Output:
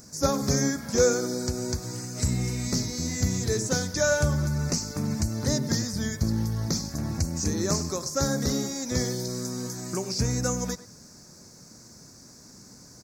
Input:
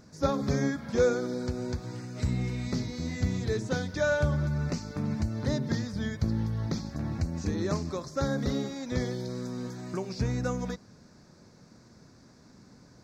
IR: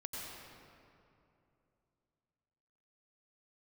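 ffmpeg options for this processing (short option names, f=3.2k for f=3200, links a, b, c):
-filter_complex "[0:a]atempo=1,asplit=2[a][b];[b]adelay=100,highpass=300,lowpass=3.4k,asoftclip=type=hard:threshold=-22.5dB,volume=-15dB[c];[a][c]amix=inputs=2:normalize=0,aexciter=amount=6.7:drive=4.7:freq=5.1k,volume=2.5dB"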